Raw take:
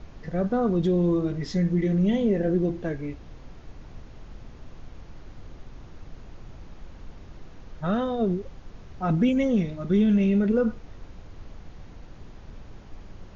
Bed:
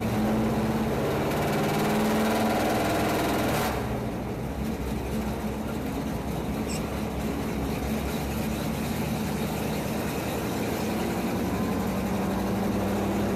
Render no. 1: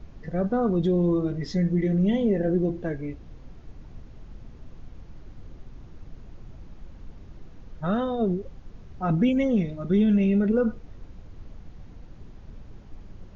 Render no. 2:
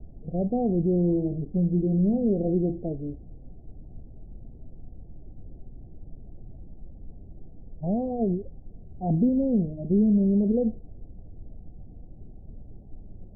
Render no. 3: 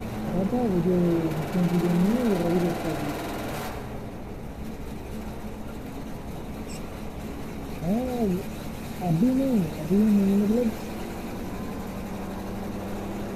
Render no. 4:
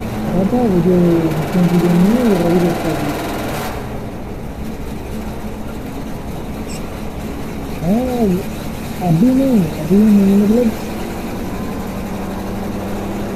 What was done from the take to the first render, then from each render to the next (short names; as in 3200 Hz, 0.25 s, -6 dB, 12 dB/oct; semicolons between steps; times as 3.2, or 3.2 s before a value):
denoiser 6 dB, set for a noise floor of -45 dBFS
steep low-pass 770 Hz 72 dB/oct; bell 520 Hz -3 dB
add bed -6.5 dB
gain +10.5 dB; limiter -3 dBFS, peak gain reduction 1.5 dB